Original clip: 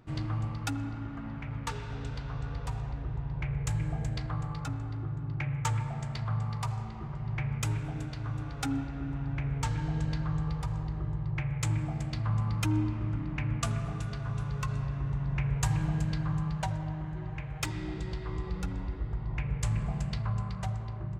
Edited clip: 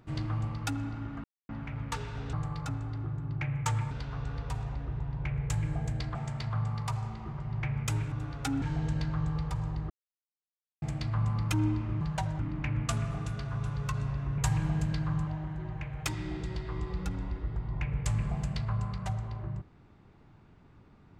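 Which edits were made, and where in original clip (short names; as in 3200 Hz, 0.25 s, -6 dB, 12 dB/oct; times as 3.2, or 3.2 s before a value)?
1.24 insert silence 0.25 s
4.32–5.9 move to 2.08
7.87–8.3 cut
8.8–9.74 cut
11.02–11.94 mute
15.12–15.57 cut
16.46–16.84 move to 13.13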